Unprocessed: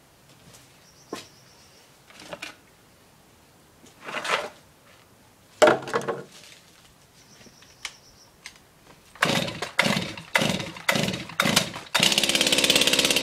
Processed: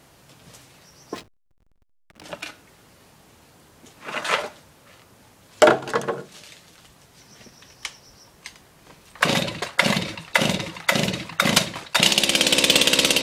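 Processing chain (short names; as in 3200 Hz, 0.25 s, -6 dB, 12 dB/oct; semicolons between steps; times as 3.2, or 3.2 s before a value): 1.14–2.24 backlash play -36.5 dBFS; gain +2.5 dB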